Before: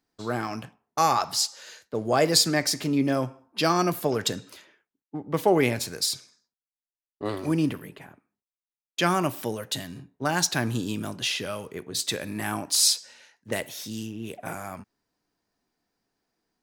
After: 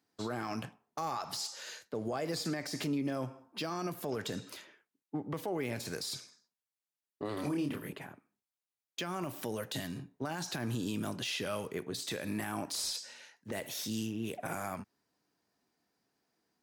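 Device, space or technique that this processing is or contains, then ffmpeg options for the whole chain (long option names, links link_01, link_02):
podcast mastering chain: -filter_complex "[0:a]asettb=1/sr,asplit=3[link_01][link_02][link_03];[link_01]atrim=end=7.354[link_04];[link_02]atrim=start=7.35:end=7.93,asetpts=PTS-STARTPTS,afade=type=in:duration=0.004:curve=qsin,afade=type=out:start_time=0.576:duration=0.004:curve=qsin,asplit=2[link_05][link_06];[link_06]adelay=28,volume=-2.5dB[link_07];[link_05][link_07]amix=inputs=2:normalize=0,atrim=end_sample=25578[link_08];[link_03]atrim=start=7.926[link_09];[link_04][link_08]acrossfade=duration=0.004:curve1=hsin:curve2=qsin[link_10];[link_10][link_09]acrossfade=duration=0.004:curve1=qsin:curve2=hsin,highpass=88,deesser=0.65,acompressor=threshold=-31dB:ratio=2.5,alimiter=level_in=2dB:limit=-24dB:level=0:latency=1:release=52,volume=-2dB" -ar 48000 -c:a libmp3lame -b:a 96k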